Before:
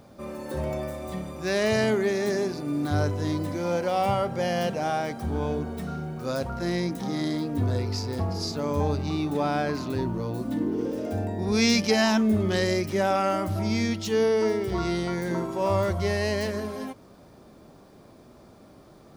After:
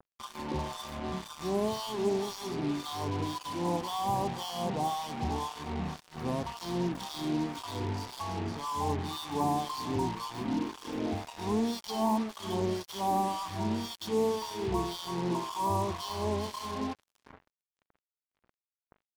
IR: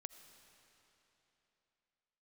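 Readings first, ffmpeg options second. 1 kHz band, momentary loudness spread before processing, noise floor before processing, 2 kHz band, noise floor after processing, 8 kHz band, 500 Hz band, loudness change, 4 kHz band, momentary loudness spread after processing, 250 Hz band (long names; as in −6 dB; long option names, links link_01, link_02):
−1.5 dB, 9 LU, −52 dBFS, −13.0 dB, below −85 dBFS, −5.5 dB, −8.5 dB, −6.5 dB, −5.5 dB, 6 LU, −7.0 dB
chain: -filter_complex "[0:a]acrossover=split=5600[link_01][link_02];[link_02]acompressor=threshold=-55dB:ratio=4:attack=1:release=60[link_03];[link_01][link_03]amix=inputs=2:normalize=0,asuperstop=centerf=1800:order=20:qfactor=1.1,aecho=1:1:0.9:0.79,acrossover=split=360|990[link_04][link_05][link_06];[link_04]acompressor=threshold=-31dB:ratio=4[link_07];[link_05]acompressor=threshold=-29dB:ratio=4[link_08];[link_06]acompressor=threshold=-45dB:ratio=4[link_09];[link_07][link_08][link_09]amix=inputs=3:normalize=0,equalizer=frequency=1900:width=0.33:gain=12.5,aecho=1:1:455|910|1365:0.2|0.0678|0.0231,acrossover=split=1000[link_10][link_11];[link_10]aeval=exprs='val(0)*(1-1/2+1/2*cos(2*PI*1.9*n/s))':channel_layout=same[link_12];[link_11]aeval=exprs='val(0)*(1-1/2-1/2*cos(2*PI*1.9*n/s))':channel_layout=same[link_13];[link_12][link_13]amix=inputs=2:normalize=0,acrusher=bits=5:mix=0:aa=0.5,volume=-2.5dB"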